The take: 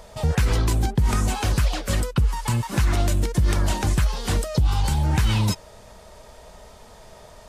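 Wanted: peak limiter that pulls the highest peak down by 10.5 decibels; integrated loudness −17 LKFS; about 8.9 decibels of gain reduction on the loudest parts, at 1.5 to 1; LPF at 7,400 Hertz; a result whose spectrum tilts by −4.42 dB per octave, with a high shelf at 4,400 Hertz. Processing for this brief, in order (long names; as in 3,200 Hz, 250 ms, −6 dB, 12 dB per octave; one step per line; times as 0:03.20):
low-pass filter 7,400 Hz
high-shelf EQ 4,400 Hz +8.5 dB
downward compressor 1.5 to 1, threshold −41 dBFS
level +21 dB
brickwall limiter −7 dBFS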